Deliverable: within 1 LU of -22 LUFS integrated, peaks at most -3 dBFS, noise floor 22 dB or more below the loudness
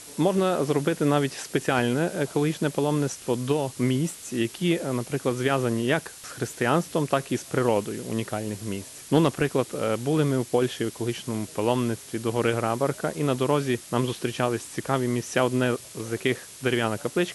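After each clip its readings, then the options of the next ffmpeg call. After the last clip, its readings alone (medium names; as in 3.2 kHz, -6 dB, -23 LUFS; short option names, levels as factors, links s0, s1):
noise floor -44 dBFS; noise floor target -48 dBFS; loudness -26.0 LUFS; peak level -8.0 dBFS; loudness target -22.0 LUFS
-> -af "afftdn=nr=6:nf=-44"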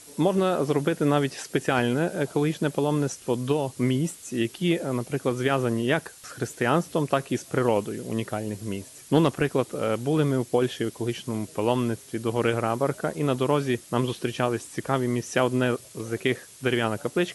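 noise floor -48 dBFS; loudness -26.0 LUFS; peak level -7.5 dBFS; loudness target -22.0 LUFS
-> -af "volume=1.58"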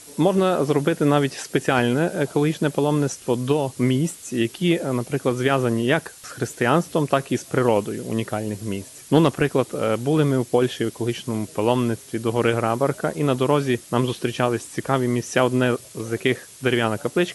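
loudness -22.0 LUFS; peak level -3.5 dBFS; noise floor -44 dBFS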